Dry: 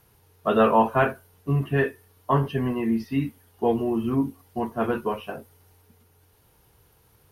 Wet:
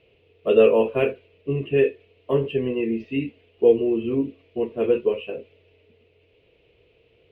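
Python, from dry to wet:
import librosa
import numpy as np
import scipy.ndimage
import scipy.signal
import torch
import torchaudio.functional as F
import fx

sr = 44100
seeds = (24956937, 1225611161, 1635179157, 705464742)

y = np.repeat(x[::4], 4)[:len(x)]
y = fx.curve_eq(y, sr, hz=(210.0, 490.0, 750.0, 1600.0, 2600.0, 7400.0), db=(0, 15, -7, -8, 14, -25))
y = F.gain(torch.from_numpy(y), -5.0).numpy()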